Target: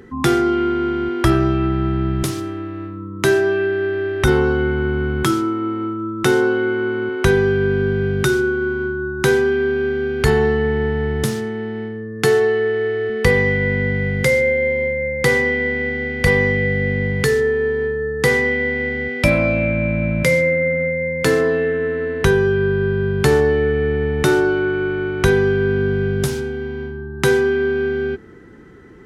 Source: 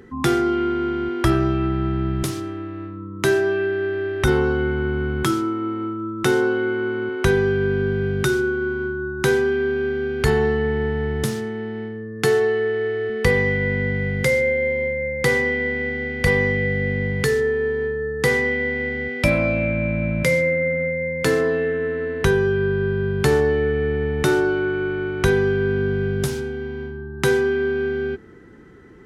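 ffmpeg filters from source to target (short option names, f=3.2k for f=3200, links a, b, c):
-filter_complex "[0:a]asettb=1/sr,asplit=3[a][b][c];[a]atrim=end=2.384[d];[b]atrim=start=2.38:end=3.11,asetpts=PTS-STARTPTS,afade=t=in:d=0.004:c=qsin,afade=t=out:st=0.726:d=0.004:c=qsin,highshelf=f=10k:g=7.5[e];[c]atrim=start=3.106[f];[d][e]acrossfade=d=0.004:c1=hsin:c2=qsin[g];[g][f]acrossfade=d=0.004:c1=qsin:c2=hsin,volume=3dB"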